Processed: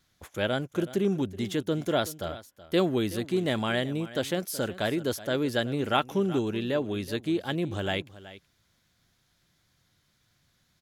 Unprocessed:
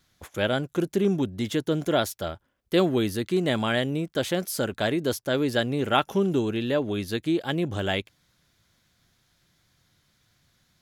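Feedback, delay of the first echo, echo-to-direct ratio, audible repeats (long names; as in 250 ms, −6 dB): repeats not evenly spaced, 374 ms, −16.5 dB, 1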